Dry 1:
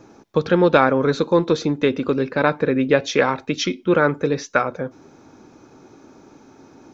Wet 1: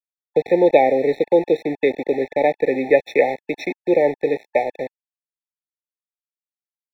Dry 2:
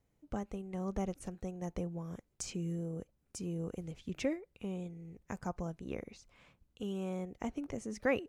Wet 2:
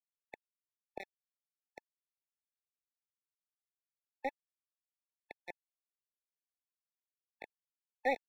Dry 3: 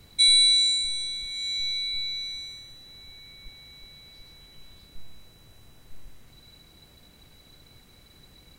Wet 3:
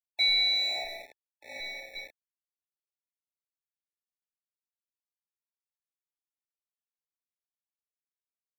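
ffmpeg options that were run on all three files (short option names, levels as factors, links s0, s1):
-filter_complex "[0:a]aeval=exprs='val(0)*gte(abs(val(0)),0.0531)':c=same,acrossover=split=350 2900:gain=0.126 1 0.0631[s0][s1][s2];[s0][s1][s2]amix=inputs=3:normalize=0,afftfilt=real='re*eq(mod(floor(b*sr/1024/870),2),0)':imag='im*eq(mod(floor(b*sr/1024/870),2),0)':win_size=1024:overlap=0.75,volume=1.68"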